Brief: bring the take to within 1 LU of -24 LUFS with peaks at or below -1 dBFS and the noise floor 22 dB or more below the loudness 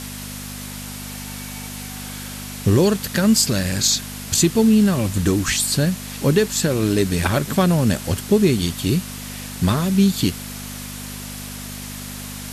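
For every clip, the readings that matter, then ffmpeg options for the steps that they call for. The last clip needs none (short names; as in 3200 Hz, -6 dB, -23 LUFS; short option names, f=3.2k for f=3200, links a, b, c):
hum 50 Hz; harmonics up to 250 Hz; hum level -34 dBFS; noise floor -33 dBFS; noise floor target -41 dBFS; loudness -18.5 LUFS; peak -4.5 dBFS; loudness target -24.0 LUFS
-> -af "bandreject=f=50:t=h:w=4,bandreject=f=100:t=h:w=4,bandreject=f=150:t=h:w=4,bandreject=f=200:t=h:w=4,bandreject=f=250:t=h:w=4"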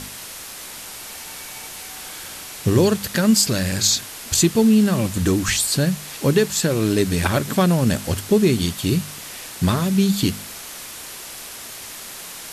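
hum none; noise floor -36 dBFS; noise floor target -41 dBFS
-> -af "afftdn=nr=6:nf=-36"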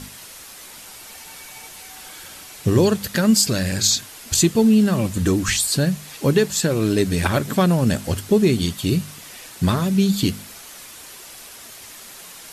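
noise floor -41 dBFS; loudness -19.0 LUFS; peak -3.5 dBFS; loudness target -24.0 LUFS
-> -af "volume=-5dB"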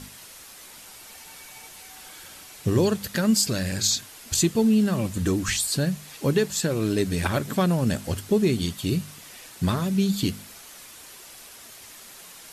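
loudness -24.0 LUFS; peak -8.5 dBFS; noise floor -46 dBFS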